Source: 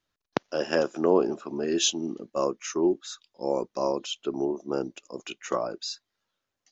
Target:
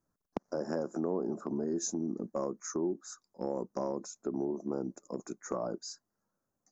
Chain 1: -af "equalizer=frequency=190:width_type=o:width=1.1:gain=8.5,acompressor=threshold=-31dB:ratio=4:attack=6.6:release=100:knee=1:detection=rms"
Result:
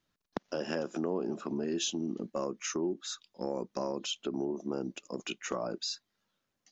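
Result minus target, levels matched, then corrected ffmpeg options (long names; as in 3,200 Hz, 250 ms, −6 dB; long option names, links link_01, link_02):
4,000 Hz band +12.5 dB
-af "asuperstop=centerf=3000:order=4:qfactor=0.54,equalizer=frequency=190:width_type=o:width=1.1:gain=8.5,acompressor=threshold=-31dB:ratio=4:attack=6.6:release=100:knee=1:detection=rms"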